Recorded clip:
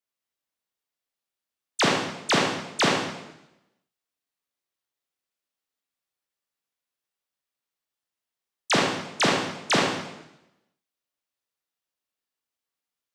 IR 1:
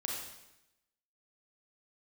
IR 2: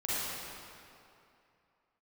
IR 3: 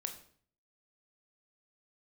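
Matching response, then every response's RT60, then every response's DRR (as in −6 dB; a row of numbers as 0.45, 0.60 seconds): 1; 0.90, 2.7, 0.55 seconds; −2.0, −10.5, 5.0 decibels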